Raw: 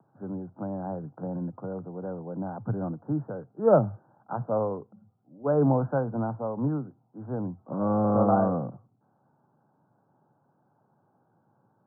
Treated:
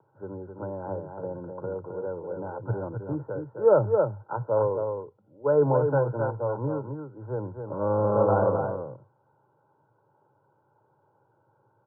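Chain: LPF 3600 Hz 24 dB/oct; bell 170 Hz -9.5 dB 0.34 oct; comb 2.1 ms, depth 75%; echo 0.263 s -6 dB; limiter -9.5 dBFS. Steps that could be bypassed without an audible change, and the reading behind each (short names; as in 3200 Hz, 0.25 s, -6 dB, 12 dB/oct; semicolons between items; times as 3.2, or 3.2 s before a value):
LPF 3600 Hz: input band ends at 1500 Hz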